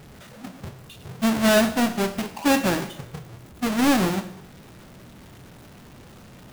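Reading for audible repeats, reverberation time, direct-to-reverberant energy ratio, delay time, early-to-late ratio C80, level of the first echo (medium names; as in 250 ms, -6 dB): no echo, 0.80 s, 11.0 dB, no echo, 15.5 dB, no echo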